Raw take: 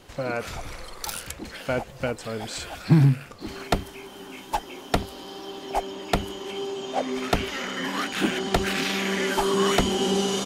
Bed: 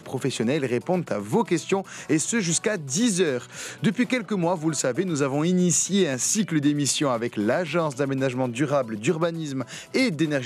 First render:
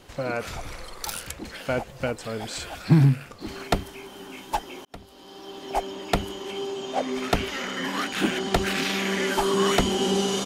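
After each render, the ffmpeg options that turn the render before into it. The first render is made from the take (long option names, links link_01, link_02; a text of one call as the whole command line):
ffmpeg -i in.wav -filter_complex "[0:a]asplit=2[link_01][link_02];[link_01]atrim=end=4.85,asetpts=PTS-STARTPTS,afade=type=out:start_time=4.846:duration=0.004:curve=hsin[link_03];[link_02]atrim=start=4.85,asetpts=PTS-STARTPTS,afade=type=in:duration=0.91[link_04];[link_03][link_04]concat=n=2:v=0:a=1" out.wav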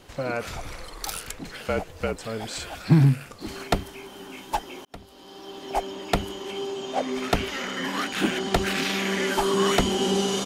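ffmpeg -i in.wav -filter_complex "[0:a]asettb=1/sr,asplit=3[link_01][link_02][link_03];[link_01]atrim=end=0.884[link_04];[link_02]atrim=start=0.88:end=2.16,asetpts=PTS-STARTPTS,afade=type=in:duration=0.004:curve=qsin,afade=type=out:start_time=1.276:duration=0.004:curve=qsin,afreqshift=-48[link_05];[link_03]atrim=start=2.156[link_06];[link_04][link_05]acrossfade=duration=0.004:curve1=hsin:curve2=qsin[link_07];[link_07][link_06]acrossfade=duration=0.004:curve1=qsin:curve2=hsin,asettb=1/sr,asplit=3[link_08][link_09][link_10];[link_08]atrim=end=3.064[link_11];[link_09]atrim=start=3.06:end=3.64,asetpts=PTS-STARTPTS,afade=type=in:duration=0.004:curve=qsin,afade=type=out:start_time=0.576:duration=0.004:curve=qsin,equalizer=frequency=10000:width_type=o:width=1.4:gain=5[link_12];[link_10]atrim=start=3.636[link_13];[link_11][link_12]acrossfade=duration=0.004:curve1=hsin:curve2=qsin[link_14];[link_14][link_13]acrossfade=duration=0.004:curve1=qsin:curve2=hsin" out.wav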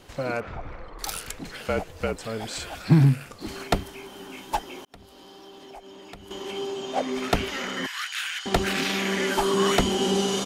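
ffmpeg -i in.wav -filter_complex "[0:a]asettb=1/sr,asplit=3[link_01][link_02][link_03];[link_01]atrim=end=0.404[link_04];[link_02]atrim=start=0.4:end=0.99,asetpts=PTS-STARTPTS,afade=type=in:duration=0.004:curve=qsin,afade=type=out:start_time=0.586:duration=0.004:curve=qsin,lowpass=1600[link_05];[link_03]atrim=start=0.986[link_06];[link_04][link_05]acrossfade=duration=0.004:curve1=hsin:curve2=qsin[link_07];[link_07][link_06]acrossfade=duration=0.004:curve1=qsin:curve2=hsin,asettb=1/sr,asplit=3[link_08][link_09][link_10];[link_08]atrim=end=4.924[link_11];[link_09]atrim=start=4.92:end=6.31,asetpts=PTS-STARTPTS,afade=type=in:duration=0.004:curve=qsin,afade=type=out:start_time=1.386:duration=0.004:curve=qsin,acompressor=threshold=-43dB:ratio=4:attack=3.2:release=140:knee=1:detection=peak[link_12];[link_10]atrim=start=6.306[link_13];[link_11][link_12]acrossfade=duration=0.004:curve1=hsin:curve2=qsin[link_14];[link_14][link_13]acrossfade=duration=0.004:curve1=qsin:curve2=hsin,asettb=1/sr,asplit=3[link_15][link_16][link_17];[link_15]atrim=end=7.864[link_18];[link_16]atrim=start=7.86:end=8.46,asetpts=PTS-STARTPTS,afade=type=in:duration=0.004:curve=qsin,afade=type=out:start_time=0.596:duration=0.004:curve=qsin,highpass=frequency=1400:width=0.5412,highpass=frequency=1400:width=1.3066[link_19];[link_17]atrim=start=8.456[link_20];[link_18][link_19]acrossfade=duration=0.004:curve1=hsin:curve2=qsin[link_21];[link_21][link_20]acrossfade=duration=0.004:curve1=qsin:curve2=hsin" out.wav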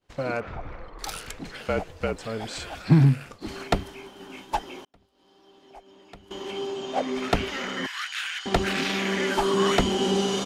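ffmpeg -i in.wav -af "agate=range=-33dB:threshold=-38dB:ratio=3:detection=peak,highshelf=frequency=9700:gain=-12" out.wav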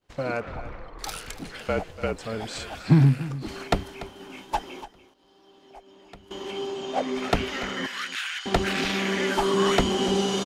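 ffmpeg -i in.wav -af "aecho=1:1:290:0.168" out.wav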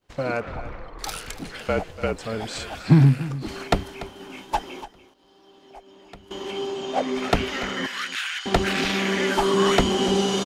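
ffmpeg -i in.wav -af "volume=2.5dB" out.wav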